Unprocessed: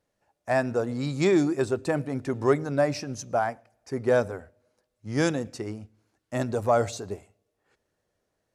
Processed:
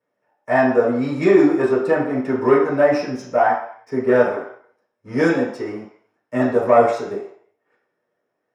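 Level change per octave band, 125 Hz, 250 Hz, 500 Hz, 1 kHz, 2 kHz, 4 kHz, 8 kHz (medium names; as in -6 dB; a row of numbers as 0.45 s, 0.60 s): +0.5 dB, +8.5 dB, +9.0 dB, +10.0 dB, +9.0 dB, 0.0 dB, no reading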